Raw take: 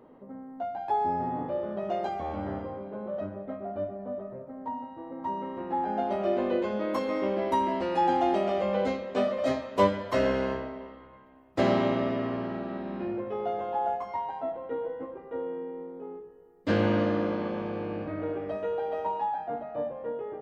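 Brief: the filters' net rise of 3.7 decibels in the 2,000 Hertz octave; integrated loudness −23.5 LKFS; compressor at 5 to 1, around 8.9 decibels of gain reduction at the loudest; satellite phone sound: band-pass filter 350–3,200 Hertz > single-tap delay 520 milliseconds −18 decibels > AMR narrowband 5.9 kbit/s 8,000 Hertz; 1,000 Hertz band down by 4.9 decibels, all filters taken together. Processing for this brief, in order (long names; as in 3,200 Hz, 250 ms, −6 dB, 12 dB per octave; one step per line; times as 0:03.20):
parametric band 1,000 Hz −7.5 dB
parametric band 2,000 Hz +7.5 dB
downward compressor 5 to 1, threshold −30 dBFS
band-pass filter 350–3,200 Hz
single-tap delay 520 ms −18 dB
level +15.5 dB
AMR narrowband 5.9 kbit/s 8,000 Hz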